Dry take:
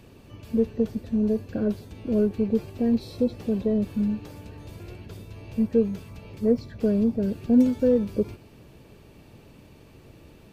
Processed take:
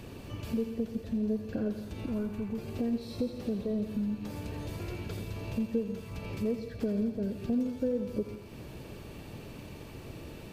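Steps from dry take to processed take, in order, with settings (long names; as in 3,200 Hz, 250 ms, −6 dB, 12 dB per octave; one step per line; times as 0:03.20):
0:02.06–0:02.58: graphic EQ with 10 bands 250 Hz −5 dB, 500 Hz −12 dB, 1,000 Hz +5 dB, 4,000 Hz −7 dB
downward compressor 3 to 1, threshold −39 dBFS, peak gain reduction 18.5 dB
feedback echo with a high-pass in the loop 85 ms, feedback 79%, high-pass 650 Hz, level −9 dB
on a send at −12.5 dB: convolution reverb RT60 0.65 s, pre-delay 111 ms
on the sum: level +5 dB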